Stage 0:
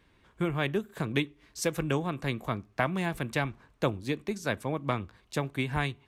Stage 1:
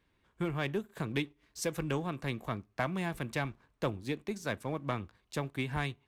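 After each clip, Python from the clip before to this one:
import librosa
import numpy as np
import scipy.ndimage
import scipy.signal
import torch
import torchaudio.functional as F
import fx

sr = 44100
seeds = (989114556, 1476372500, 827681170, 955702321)

y = fx.leveller(x, sr, passes=1)
y = F.gain(torch.from_numpy(y), -7.5).numpy()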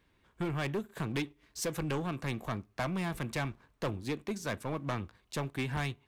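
y = 10.0 ** (-31.5 / 20.0) * np.tanh(x / 10.0 ** (-31.5 / 20.0))
y = F.gain(torch.from_numpy(y), 3.5).numpy()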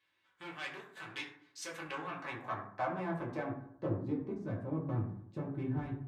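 y = fx.filter_sweep_bandpass(x, sr, from_hz=3200.0, to_hz=210.0, start_s=1.48, end_s=4.17, q=0.82)
y = fx.rev_fdn(y, sr, rt60_s=0.67, lf_ratio=1.2, hf_ratio=0.45, size_ms=54.0, drr_db=-4.5)
y = F.gain(torch.from_numpy(y), -4.5).numpy()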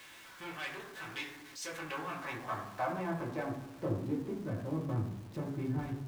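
y = x + 0.5 * 10.0 ** (-48.0 / 20.0) * np.sign(x)
y = fx.dmg_crackle(y, sr, seeds[0], per_s=440.0, level_db=-51.0)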